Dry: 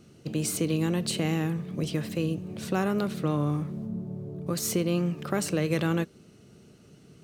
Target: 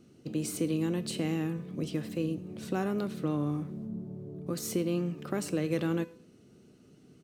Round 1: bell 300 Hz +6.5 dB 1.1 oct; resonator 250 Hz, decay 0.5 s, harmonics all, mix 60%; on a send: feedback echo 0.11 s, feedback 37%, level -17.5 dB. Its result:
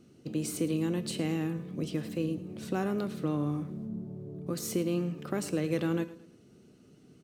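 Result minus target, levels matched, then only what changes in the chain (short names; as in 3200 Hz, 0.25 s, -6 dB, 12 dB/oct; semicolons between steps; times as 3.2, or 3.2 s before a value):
echo-to-direct +9.5 dB
change: feedback echo 0.11 s, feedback 37%, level -27 dB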